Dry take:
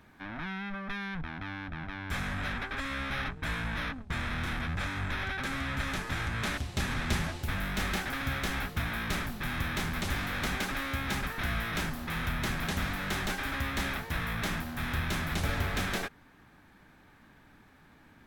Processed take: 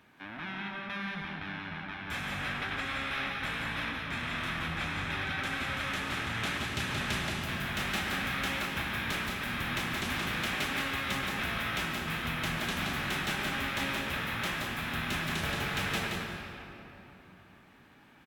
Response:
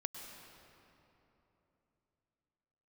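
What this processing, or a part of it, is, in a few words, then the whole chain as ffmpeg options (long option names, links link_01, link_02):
PA in a hall: -filter_complex "[0:a]highpass=frequency=170:poles=1,equalizer=frequency=2800:width_type=o:width=0.52:gain=6,aecho=1:1:175:0.596[link_01];[1:a]atrim=start_sample=2205[link_02];[link_01][link_02]afir=irnorm=-1:irlink=0"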